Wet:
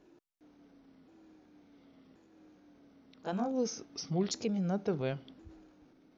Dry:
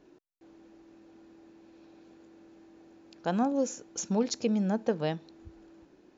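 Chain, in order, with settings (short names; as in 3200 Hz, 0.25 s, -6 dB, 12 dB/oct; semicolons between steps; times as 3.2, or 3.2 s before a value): repeated pitch sweeps -4 st, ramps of 1.078 s; transient shaper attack -1 dB, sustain +5 dB; gain -3.5 dB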